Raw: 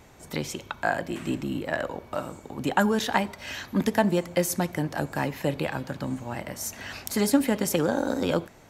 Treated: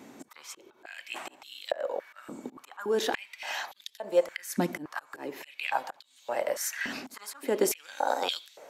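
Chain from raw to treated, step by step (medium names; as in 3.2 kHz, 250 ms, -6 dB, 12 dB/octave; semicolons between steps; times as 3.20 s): slow attack 373 ms; step-sequenced high-pass 3.5 Hz 250–3600 Hz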